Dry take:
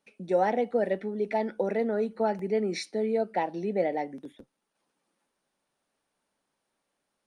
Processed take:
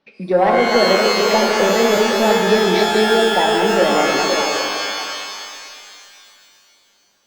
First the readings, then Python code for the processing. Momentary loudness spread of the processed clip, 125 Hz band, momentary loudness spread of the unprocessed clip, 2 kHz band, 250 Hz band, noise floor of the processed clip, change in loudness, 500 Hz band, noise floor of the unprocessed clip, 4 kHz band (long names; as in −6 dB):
12 LU, +12.5 dB, 5 LU, +21.5 dB, +12.0 dB, −58 dBFS, +13.5 dB, +13.0 dB, −82 dBFS, +28.0 dB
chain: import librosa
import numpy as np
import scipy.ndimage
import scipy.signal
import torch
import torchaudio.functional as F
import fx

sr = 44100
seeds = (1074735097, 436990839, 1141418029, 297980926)

p1 = fx.reverse_delay(x, sr, ms=152, wet_db=-5.5)
p2 = scipy.signal.sosfilt(scipy.signal.butter(6, 5000.0, 'lowpass', fs=sr, output='sos'), p1)
p3 = fx.fold_sine(p2, sr, drive_db=5, ceiling_db=-13.0)
p4 = p2 + (p3 * 10.0 ** (-5.0 / 20.0))
p5 = fx.echo_stepped(p4, sr, ms=509, hz=470.0, octaves=1.4, feedback_pct=70, wet_db=-4.5)
p6 = fx.rev_shimmer(p5, sr, seeds[0], rt60_s=2.4, semitones=12, shimmer_db=-2, drr_db=3.5)
y = p6 * 10.0 ** (2.0 / 20.0)